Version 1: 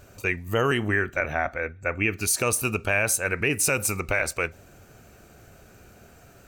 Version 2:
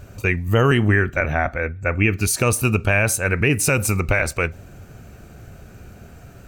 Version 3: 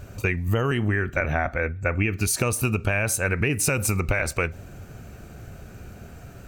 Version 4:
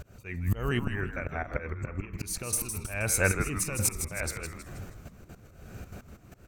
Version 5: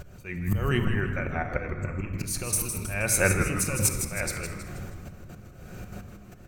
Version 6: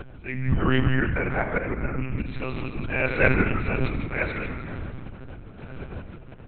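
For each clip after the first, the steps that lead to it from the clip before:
tone controls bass +8 dB, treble -3 dB; gain +4.5 dB
compressor, threshold -19 dBFS, peak gain reduction 8.5 dB
step gate "xx.xxxxxxx.xxx.." 190 bpm -12 dB; auto swell 0.323 s; frequency-shifting echo 0.159 s, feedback 43%, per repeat -140 Hz, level -8 dB
shoebox room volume 2100 m³, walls mixed, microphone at 0.96 m; gain +2.5 dB
in parallel at -10 dB: soft clip -16.5 dBFS, distortion -17 dB; on the sum: monotone LPC vocoder at 8 kHz 130 Hz; gain +2 dB

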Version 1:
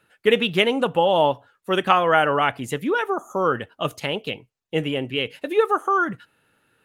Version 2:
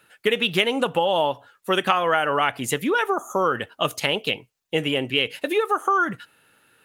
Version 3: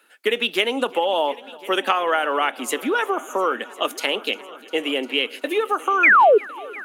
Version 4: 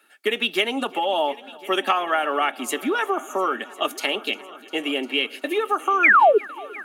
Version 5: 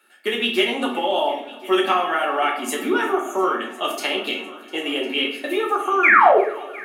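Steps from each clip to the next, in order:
compressor 6:1, threshold -21 dBFS, peak gain reduction 9.5 dB; tilt +1.5 dB/oct; gain +4.5 dB
painted sound fall, 6.03–6.38, 380–2600 Hz -12 dBFS; steep high-pass 230 Hz 48 dB/oct; multi-head echo 0.351 s, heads all three, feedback 51%, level -23.5 dB
notch comb 500 Hz
shoebox room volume 80 m³, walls mixed, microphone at 0.92 m; gain -2 dB

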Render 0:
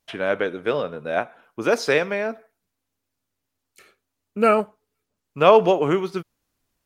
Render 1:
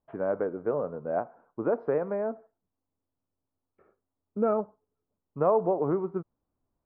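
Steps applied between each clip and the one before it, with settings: LPF 1100 Hz 24 dB/oct; compressor 2:1, threshold -21 dBFS, peak gain reduction 7 dB; gain -3.5 dB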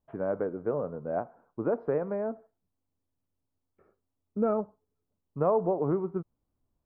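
low shelf 220 Hz +7.5 dB; gain -3 dB

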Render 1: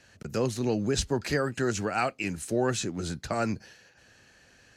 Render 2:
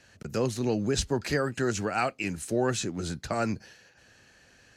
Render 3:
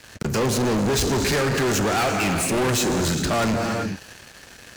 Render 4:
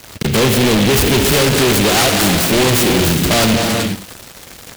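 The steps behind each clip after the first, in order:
nothing audible
non-linear reverb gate 0.43 s flat, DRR 8.5 dB; soft clip -18 dBFS, distortion -20 dB; sample leveller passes 5
echo 85 ms -13.5 dB; noise-modulated delay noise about 2600 Hz, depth 0.17 ms; gain +8.5 dB

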